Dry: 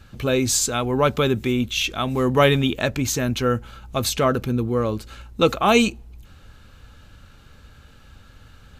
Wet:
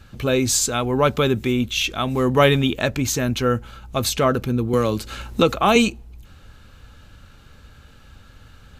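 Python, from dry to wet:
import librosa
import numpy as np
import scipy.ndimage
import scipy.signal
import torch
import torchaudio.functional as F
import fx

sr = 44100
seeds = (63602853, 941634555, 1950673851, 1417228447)

y = fx.band_squash(x, sr, depth_pct=70, at=(4.73, 5.76))
y = y * librosa.db_to_amplitude(1.0)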